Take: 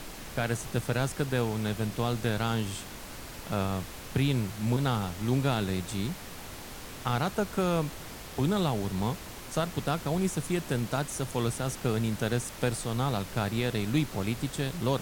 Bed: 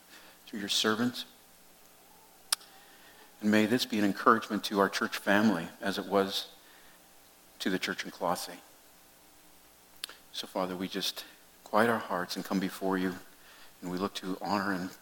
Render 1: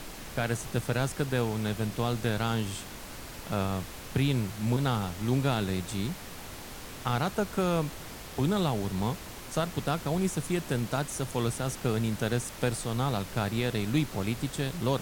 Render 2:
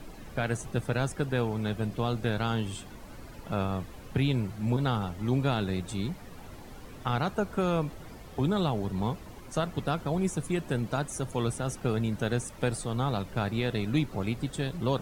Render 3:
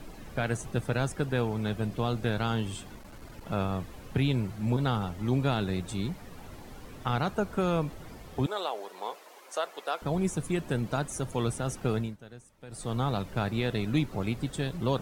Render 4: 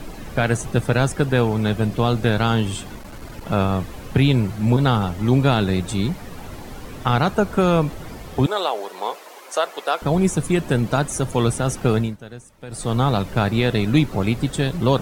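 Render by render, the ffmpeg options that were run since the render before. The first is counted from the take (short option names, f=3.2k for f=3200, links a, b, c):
-af anull
-af "afftdn=nr=12:nf=-43"
-filter_complex "[0:a]asettb=1/sr,asplit=3[a][b][c];[a]atrim=end=2.954[d];[b]atrim=start=2.95:end=3.46,asetpts=PTS-STARTPTS,afade=t=in:d=0.004:c=qsin,afade=t=out:st=0.506:d=0.004:c=qsin,aeval=exprs='clip(val(0),-1,0.00531)':c=same[e];[c]atrim=start=3.456[f];[d][e]acrossfade=d=0.004:c1=hsin:c2=qsin[g];[g][f]acrossfade=d=0.004:c1=qsin:c2=hsin,asettb=1/sr,asplit=3[h][i][j];[h]atrim=end=8.464[k];[i]atrim=start=8.46:end=10.02,asetpts=PTS-STARTPTS,afade=t=in:d=0.004:c=qsin,afade=t=out:st=1.556:d=0.004:c=qsin,highpass=f=460:w=0.5412,highpass=f=460:w=1.3066[l];[j]atrim=start=10.016[m];[k][l]acrossfade=d=0.004:c1=hsin:c2=qsin[n];[n][m]acrossfade=d=0.004:c1=qsin:c2=hsin,asplit=3[o][p][q];[o]atrim=end=12.17,asetpts=PTS-STARTPTS,afade=t=out:st=11.96:d=0.21:silence=0.112202[r];[p]atrim=start=12.17:end=12.68,asetpts=PTS-STARTPTS,volume=-19dB[s];[q]atrim=start=12.68,asetpts=PTS-STARTPTS,afade=t=in:d=0.21:silence=0.112202[t];[r][s][t]concat=n=3:v=0:a=1"
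-af "volume=10.5dB"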